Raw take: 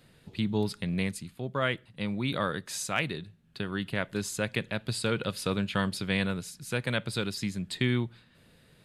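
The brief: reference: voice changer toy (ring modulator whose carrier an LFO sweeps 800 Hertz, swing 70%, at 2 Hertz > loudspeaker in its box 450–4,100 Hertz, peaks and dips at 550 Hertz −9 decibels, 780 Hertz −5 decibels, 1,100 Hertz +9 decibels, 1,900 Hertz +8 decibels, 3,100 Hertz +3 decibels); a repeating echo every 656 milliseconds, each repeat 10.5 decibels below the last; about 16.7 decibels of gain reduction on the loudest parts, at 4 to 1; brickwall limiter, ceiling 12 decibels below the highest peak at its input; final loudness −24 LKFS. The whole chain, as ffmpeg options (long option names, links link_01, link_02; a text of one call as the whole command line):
ffmpeg -i in.wav -af "acompressor=threshold=-44dB:ratio=4,alimiter=level_in=14dB:limit=-24dB:level=0:latency=1,volume=-14dB,aecho=1:1:656|1312|1968:0.299|0.0896|0.0269,aeval=exprs='val(0)*sin(2*PI*800*n/s+800*0.7/2*sin(2*PI*2*n/s))':channel_layout=same,highpass=450,equalizer=frequency=550:width_type=q:width=4:gain=-9,equalizer=frequency=780:width_type=q:width=4:gain=-5,equalizer=frequency=1100:width_type=q:width=4:gain=9,equalizer=frequency=1900:width_type=q:width=4:gain=8,equalizer=frequency=3100:width_type=q:width=4:gain=3,lowpass=frequency=4100:width=0.5412,lowpass=frequency=4100:width=1.3066,volume=25.5dB" out.wav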